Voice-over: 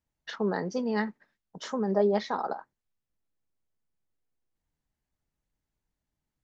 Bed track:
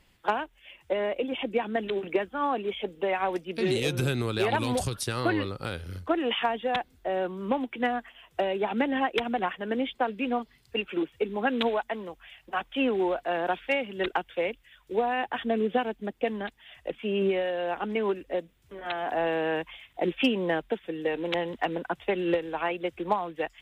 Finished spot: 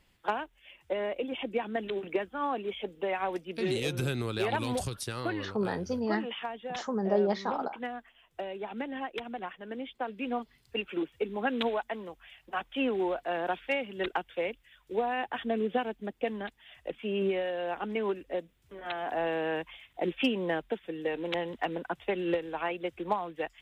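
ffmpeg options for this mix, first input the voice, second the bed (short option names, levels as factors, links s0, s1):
-filter_complex "[0:a]adelay=5150,volume=0.794[s0];[1:a]volume=1.33,afade=t=out:st=4.77:d=0.9:silence=0.501187,afade=t=in:st=9.87:d=0.57:silence=0.473151[s1];[s0][s1]amix=inputs=2:normalize=0"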